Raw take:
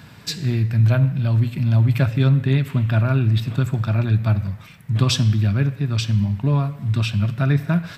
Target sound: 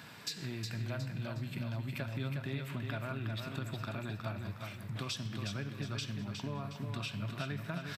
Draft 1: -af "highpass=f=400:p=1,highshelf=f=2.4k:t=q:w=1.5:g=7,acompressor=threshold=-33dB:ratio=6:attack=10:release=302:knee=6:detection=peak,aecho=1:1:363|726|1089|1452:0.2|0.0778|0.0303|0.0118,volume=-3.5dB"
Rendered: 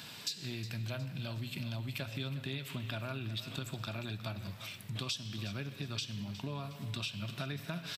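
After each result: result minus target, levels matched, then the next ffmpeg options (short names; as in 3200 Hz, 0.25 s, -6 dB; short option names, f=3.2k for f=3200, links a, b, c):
echo-to-direct -8.5 dB; 4000 Hz band +4.0 dB
-af "highpass=f=400:p=1,highshelf=f=2.4k:t=q:w=1.5:g=7,acompressor=threshold=-33dB:ratio=6:attack=10:release=302:knee=6:detection=peak,aecho=1:1:363|726|1089|1452|1815:0.531|0.207|0.0807|0.0315|0.0123,volume=-3.5dB"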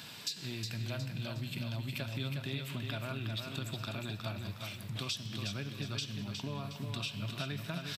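4000 Hz band +4.0 dB
-af "highpass=f=400:p=1,acompressor=threshold=-33dB:ratio=6:attack=10:release=302:knee=6:detection=peak,aecho=1:1:363|726|1089|1452|1815:0.531|0.207|0.0807|0.0315|0.0123,volume=-3.5dB"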